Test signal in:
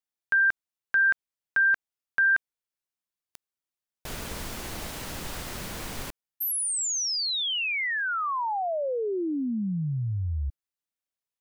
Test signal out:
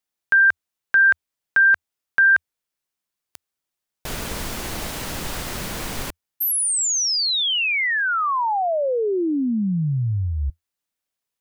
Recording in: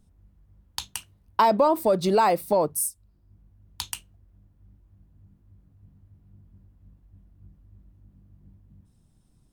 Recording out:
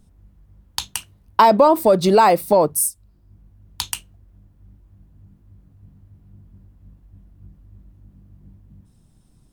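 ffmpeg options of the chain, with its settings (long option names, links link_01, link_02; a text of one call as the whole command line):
ffmpeg -i in.wav -af "equalizer=frequency=83:width_type=o:width=0.27:gain=-3,volume=7dB" out.wav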